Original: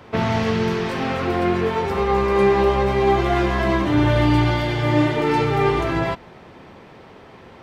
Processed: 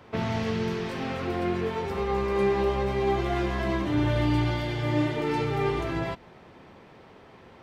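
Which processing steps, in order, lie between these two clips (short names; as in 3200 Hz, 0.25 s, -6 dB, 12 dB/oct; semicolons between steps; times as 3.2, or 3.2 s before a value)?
dynamic EQ 1100 Hz, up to -3 dB, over -30 dBFS, Q 0.73; gain -7 dB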